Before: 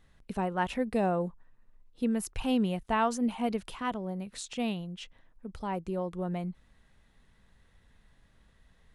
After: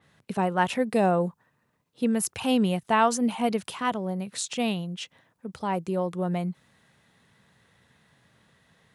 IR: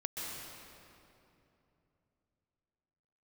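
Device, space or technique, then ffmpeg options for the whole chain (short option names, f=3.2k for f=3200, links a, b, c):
low shelf boost with a cut just above: -af "highpass=f=120:w=0.5412,highpass=f=120:w=1.3066,lowshelf=f=87:g=7,equalizer=f=250:t=o:w=1.1:g=-3.5,adynamicequalizer=threshold=0.00282:dfrequency=4400:dqfactor=0.7:tfrequency=4400:tqfactor=0.7:attack=5:release=100:ratio=0.375:range=2:mode=boostabove:tftype=highshelf,volume=6.5dB"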